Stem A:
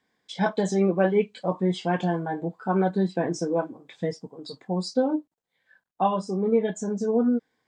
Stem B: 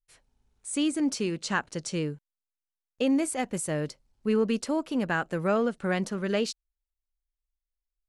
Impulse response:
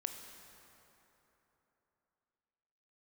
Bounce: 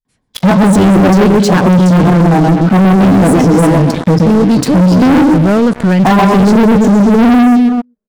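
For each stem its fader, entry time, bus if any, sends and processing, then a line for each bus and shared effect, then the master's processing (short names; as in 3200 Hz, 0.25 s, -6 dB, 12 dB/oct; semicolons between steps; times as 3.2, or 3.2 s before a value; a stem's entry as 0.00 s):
+3.0 dB, 0.05 s, no send, echo send -4 dB, ten-band EQ 250 Hz +9 dB, 1000 Hz +9 dB, 2000 Hz -5 dB, 8000 Hz -4 dB
+3.0 dB, 0.00 s, send -21.5 dB, echo send -21.5 dB, dry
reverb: on, RT60 3.5 s, pre-delay 18 ms
echo: feedback echo 0.127 s, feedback 27%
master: bell 120 Hz +15 dB 2.1 oct; sample leveller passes 5; limiter -4.5 dBFS, peak gain reduction 9.5 dB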